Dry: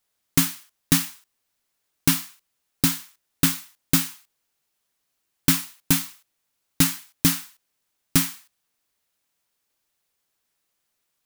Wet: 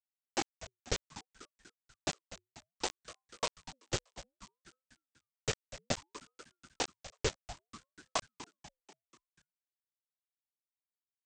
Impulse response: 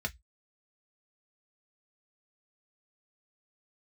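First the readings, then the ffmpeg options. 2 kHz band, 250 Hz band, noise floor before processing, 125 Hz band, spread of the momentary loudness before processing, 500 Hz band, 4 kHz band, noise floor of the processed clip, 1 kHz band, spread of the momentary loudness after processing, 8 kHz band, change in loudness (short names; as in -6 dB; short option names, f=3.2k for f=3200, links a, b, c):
-12.0 dB, -21.5 dB, -77 dBFS, -18.5 dB, 11 LU, +1.5 dB, -12.0 dB, under -85 dBFS, -4.5 dB, 19 LU, -16.5 dB, -16.5 dB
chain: -filter_complex "[0:a]afftfilt=real='hypot(re,im)*cos(2*PI*random(0))':imag='hypot(re,im)*sin(2*PI*random(1))':win_size=512:overlap=0.75,aresample=16000,acrusher=bits=3:mix=0:aa=0.000001,aresample=44100,asplit=6[a][b][c][d][e][f];[b]adelay=244,afreqshift=130,volume=-14.5dB[g];[c]adelay=488,afreqshift=260,volume=-20dB[h];[d]adelay=732,afreqshift=390,volume=-25.5dB[i];[e]adelay=976,afreqshift=520,volume=-31dB[j];[f]adelay=1220,afreqshift=650,volume=-36.6dB[k];[a][g][h][i][j][k]amix=inputs=6:normalize=0,aeval=exprs='val(0)*sin(2*PI*570*n/s+570*0.6/0.62*sin(2*PI*0.62*n/s))':c=same,volume=-5.5dB"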